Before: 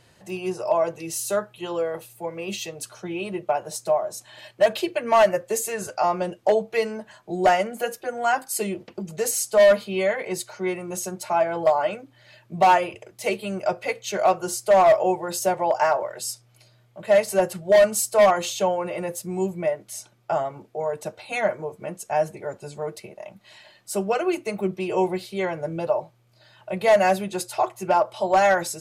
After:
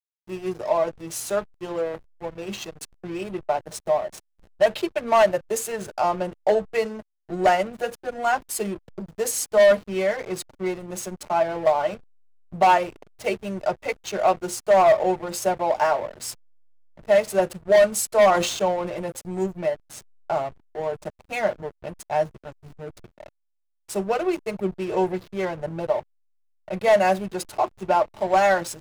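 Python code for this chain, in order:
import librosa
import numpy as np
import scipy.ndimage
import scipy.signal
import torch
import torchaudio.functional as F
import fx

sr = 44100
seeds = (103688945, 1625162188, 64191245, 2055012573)

y = fx.peak_eq(x, sr, hz=fx.line((22.37, 320.0), (22.99, 1100.0)), db=-13.5, octaves=0.8, at=(22.37, 22.99), fade=0.02)
y = fx.backlash(y, sr, play_db=-29.0)
y = fx.sustainer(y, sr, db_per_s=59.0, at=(18.13, 18.99))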